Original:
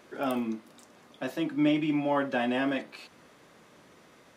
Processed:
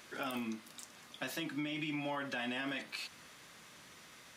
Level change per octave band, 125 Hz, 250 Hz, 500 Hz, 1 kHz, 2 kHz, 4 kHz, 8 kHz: -8.5 dB, -12.5 dB, -13.0 dB, -10.0 dB, -4.5 dB, -1.5 dB, no reading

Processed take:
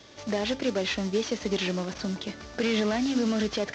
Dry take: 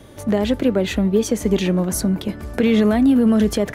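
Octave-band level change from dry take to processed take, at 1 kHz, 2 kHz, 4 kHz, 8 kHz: -6.0 dB, -3.0 dB, -1.0 dB, -10.0 dB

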